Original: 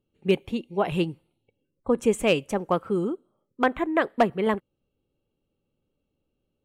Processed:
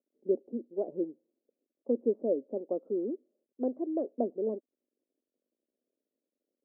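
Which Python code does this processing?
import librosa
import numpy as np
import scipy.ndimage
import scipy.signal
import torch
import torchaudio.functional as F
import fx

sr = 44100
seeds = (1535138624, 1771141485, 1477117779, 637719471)

y = fx.cvsd(x, sr, bps=64000)
y = scipy.signal.sosfilt(scipy.signal.ellip(3, 1.0, 80, [240.0, 600.0], 'bandpass', fs=sr, output='sos'), y)
y = F.gain(torch.from_numpy(y), -5.0).numpy()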